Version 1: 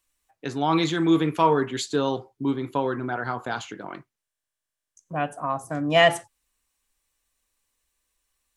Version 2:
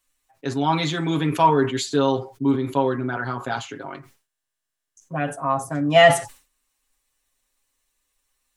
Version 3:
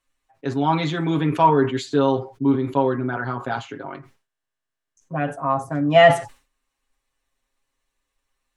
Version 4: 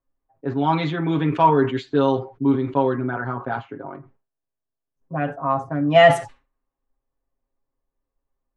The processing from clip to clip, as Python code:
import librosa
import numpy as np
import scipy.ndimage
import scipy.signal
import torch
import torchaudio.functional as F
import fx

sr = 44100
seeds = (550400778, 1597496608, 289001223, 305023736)

y1 = x + 0.82 * np.pad(x, (int(7.4 * sr / 1000.0), 0))[:len(x)]
y1 = fx.sustainer(y1, sr, db_per_s=150.0)
y2 = fx.lowpass(y1, sr, hz=2200.0, slope=6)
y2 = y2 * librosa.db_to_amplitude(1.5)
y3 = fx.env_lowpass(y2, sr, base_hz=710.0, full_db=-12.5)